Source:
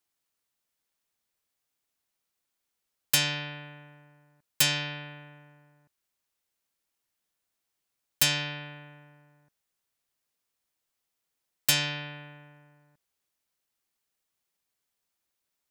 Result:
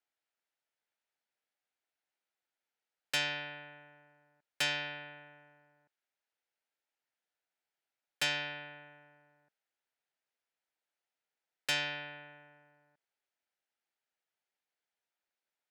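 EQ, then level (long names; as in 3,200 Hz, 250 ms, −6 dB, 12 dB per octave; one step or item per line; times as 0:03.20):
resonant band-pass 1,100 Hz, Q 0.73
parametric band 1,100 Hz −12 dB 0.28 octaves
0.0 dB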